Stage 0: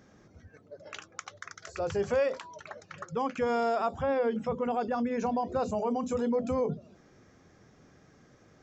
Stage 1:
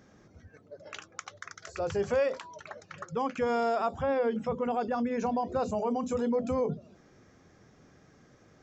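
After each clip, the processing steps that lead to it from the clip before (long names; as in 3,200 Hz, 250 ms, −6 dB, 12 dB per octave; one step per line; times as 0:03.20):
no processing that can be heard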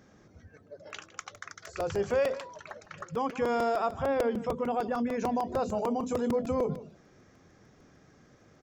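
single-tap delay 157 ms −16 dB
regular buffer underruns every 0.15 s, samples 128, repeat, from 0:00.90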